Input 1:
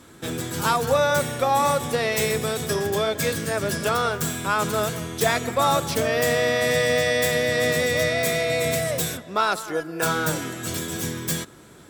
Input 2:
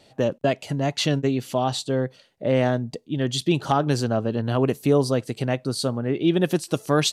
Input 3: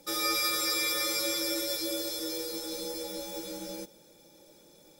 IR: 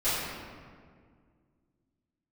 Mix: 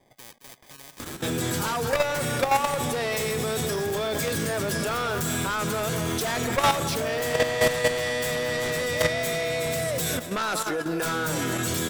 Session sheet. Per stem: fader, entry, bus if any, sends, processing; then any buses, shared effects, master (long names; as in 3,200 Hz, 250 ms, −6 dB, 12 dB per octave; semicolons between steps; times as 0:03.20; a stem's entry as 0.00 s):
−5.0 dB, 1.00 s, bus A, no send, echo send −18 dB, sine wavefolder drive 9 dB, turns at −8 dBFS
−6.5 dB, 0.00 s, no bus, no send, echo send −11 dB, Butterworth low-pass 4,000 Hz 96 dB per octave; decimation without filtering 32×; every bin compressed towards the loudest bin 4 to 1
−10.5 dB, 1.50 s, bus A, no send, no echo send, no processing
bus A: 0.0 dB, upward compression, threshold −30 dBFS; brickwall limiter −15 dBFS, peak gain reduction 3.5 dB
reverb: not used
echo: repeating echo 220 ms, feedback 53%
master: output level in coarse steps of 9 dB